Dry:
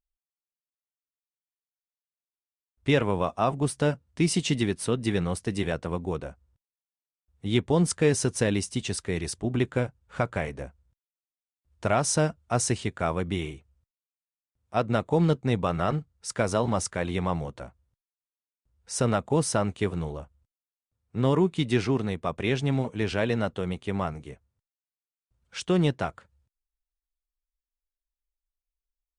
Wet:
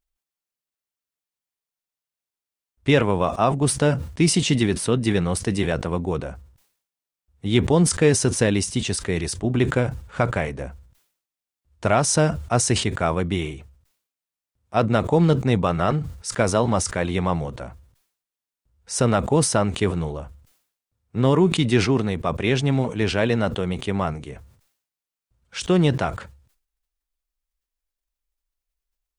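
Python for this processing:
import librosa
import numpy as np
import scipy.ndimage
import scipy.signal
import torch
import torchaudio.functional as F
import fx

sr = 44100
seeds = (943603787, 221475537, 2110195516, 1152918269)

y = fx.sustainer(x, sr, db_per_s=96.0)
y = F.gain(torch.from_numpy(y), 5.0).numpy()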